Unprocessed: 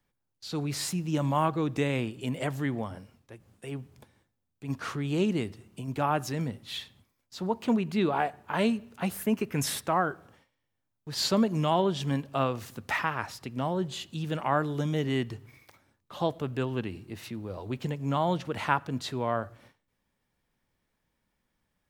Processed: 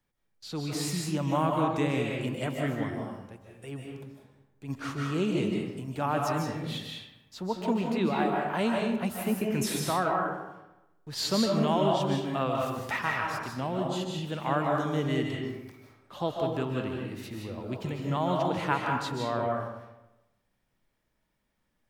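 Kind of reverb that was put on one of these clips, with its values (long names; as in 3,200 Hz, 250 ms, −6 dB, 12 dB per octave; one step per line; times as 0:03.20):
comb and all-pass reverb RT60 1 s, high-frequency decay 0.6×, pre-delay 110 ms, DRR −0.5 dB
level −2.5 dB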